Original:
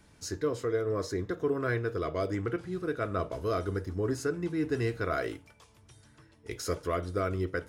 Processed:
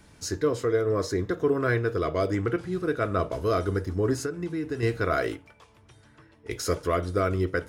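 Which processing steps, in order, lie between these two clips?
4.19–4.83 compressor 6:1, threshold -33 dBFS, peak gain reduction 8.5 dB; 5.35–6.5 tone controls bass -4 dB, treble -10 dB; gain +5.5 dB

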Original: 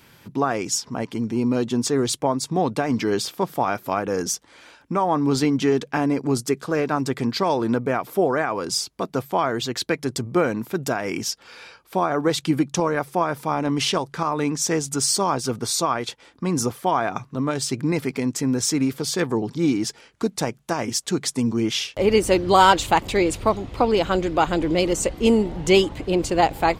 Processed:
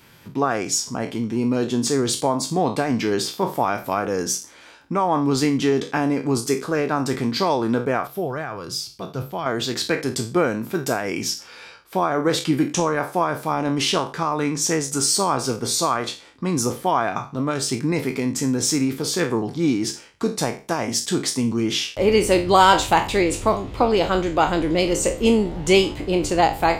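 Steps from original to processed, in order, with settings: spectral trails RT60 0.33 s; 8.07–9.46 graphic EQ 125/250/500/1000/2000/8000 Hz +5/-8/-5/-7/-6/-9 dB

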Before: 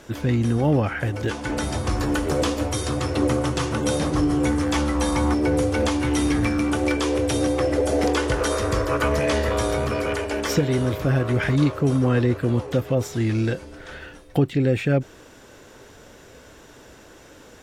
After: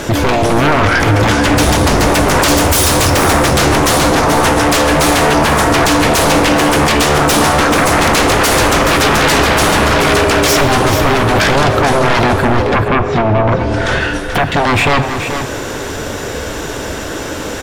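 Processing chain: 2.48–3.1 high shelf 4800 Hz +10 dB; 12.44–14.52 treble ducked by the level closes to 950 Hz, closed at -18.5 dBFS; in parallel at +2.5 dB: compressor, threshold -32 dBFS, peak gain reduction 16.5 dB; on the sum: sine folder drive 17 dB, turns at -4.5 dBFS; on a send: echo 0.432 s -8.5 dB; on the sum: plate-style reverb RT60 2.3 s, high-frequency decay 0.6×, DRR 9.5 dB; ending taper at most 190 dB/s; gain -4 dB

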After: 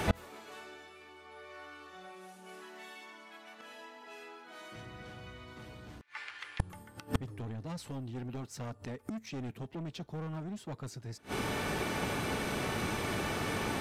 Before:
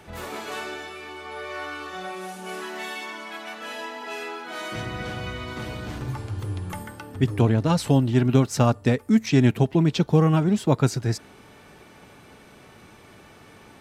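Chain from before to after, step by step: soft clip -20.5 dBFS, distortion -7 dB; 6.01–6.6 ladder band-pass 2300 Hz, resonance 50%; flipped gate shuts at -30 dBFS, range -30 dB; gain +14.5 dB

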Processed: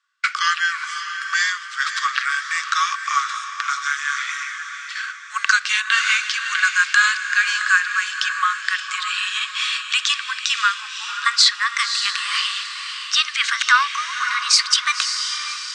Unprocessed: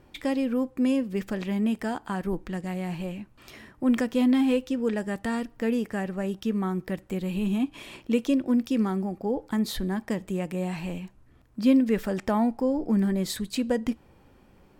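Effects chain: speed glide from 61% -> 127%; steep low-pass 8200 Hz 48 dB/oct; gate -46 dBFS, range -24 dB; rippled Chebyshev high-pass 1100 Hz, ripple 6 dB; on a send: diffused feedback echo 0.558 s, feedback 47%, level -8 dB; on the sum: maximiser +26 dB; gain -1 dB

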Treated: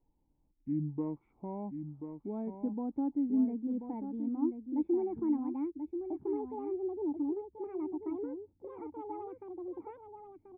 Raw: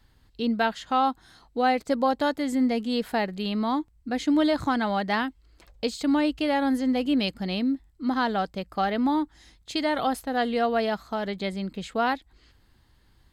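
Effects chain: speed glide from 54% -> 198%; dynamic EQ 640 Hz, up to -7 dB, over -40 dBFS, Q 1.6; vocal tract filter u; echo 1.035 s -8 dB

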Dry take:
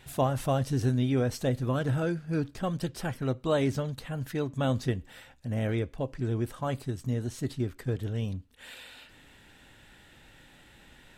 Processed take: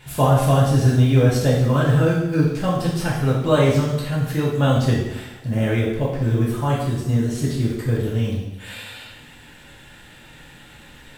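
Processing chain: companded quantiser 8-bit; two-slope reverb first 0.83 s, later 2.3 s, DRR -6 dB; gain +4 dB

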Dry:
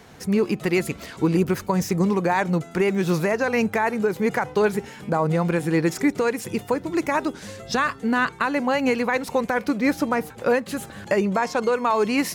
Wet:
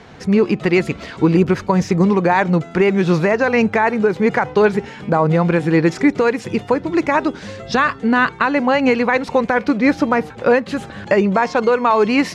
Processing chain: LPF 4400 Hz 12 dB/oct; gain +6.5 dB

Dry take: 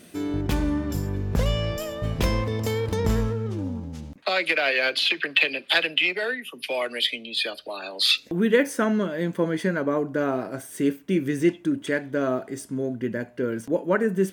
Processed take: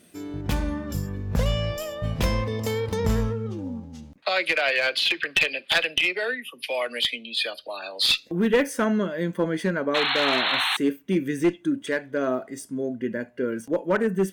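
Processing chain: painted sound noise, 9.94–10.77, 710–4300 Hz -24 dBFS; spectral noise reduction 7 dB; one-sided clip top -15.5 dBFS

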